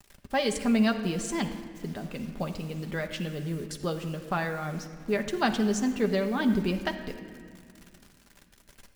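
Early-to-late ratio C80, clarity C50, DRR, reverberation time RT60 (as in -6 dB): 10.5 dB, 9.0 dB, 4.0 dB, 2.0 s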